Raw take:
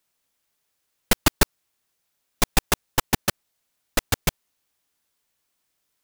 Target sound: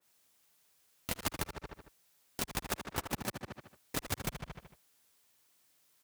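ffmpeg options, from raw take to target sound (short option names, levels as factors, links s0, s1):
-filter_complex "[0:a]highshelf=f=5100:g=3.5,asoftclip=type=tanh:threshold=0.316,asplit=2[s0][s1];[s1]adelay=75,lowpass=f=4500:p=1,volume=0.299,asplit=2[s2][s3];[s3]adelay=75,lowpass=f=4500:p=1,volume=0.53,asplit=2[s4][s5];[s5]adelay=75,lowpass=f=4500:p=1,volume=0.53,asplit=2[s6][s7];[s7]adelay=75,lowpass=f=4500:p=1,volume=0.53,asplit=2[s8][s9];[s9]adelay=75,lowpass=f=4500:p=1,volume=0.53,asplit=2[s10][s11];[s11]adelay=75,lowpass=f=4500:p=1,volume=0.53[s12];[s2][s4][s6][s8][s10][s12]amix=inputs=6:normalize=0[s13];[s0][s13]amix=inputs=2:normalize=0,acompressor=threshold=0.0398:ratio=20,asplit=4[s14][s15][s16][s17];[s15]asetrate=33038,aresample=44100,atempo=1.33484,volume=0.282[s18];[s16]asetrate=58866,aresample=44100,atempo=0.749154,volume=0.282[s19];[s17]asetrate=66075,aresample=44100,atempo=0.66742,volume=0.141[s20];[s14][s18][s19][s20]amix=inputs=4:normalize=0,highpass=51,alimiter=limit=0.0841:level=0:latency=1:release=328,adynamicequalizer=threshold=0.00224:dfrequency=2200:dqfactor=0.7:tfrequency=2200:tqfactor=0.7:attack=5:release=100:ratio=0.375:range=3:mode=cutabove:tftype=highshelf,volume=1.26"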